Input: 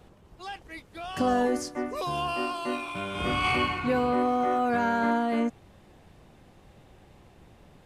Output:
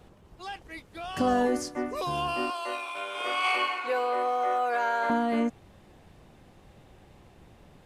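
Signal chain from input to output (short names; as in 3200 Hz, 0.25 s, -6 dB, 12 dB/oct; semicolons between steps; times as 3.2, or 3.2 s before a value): 2.5–5.1 HPF 450 Hz 24 dB/oct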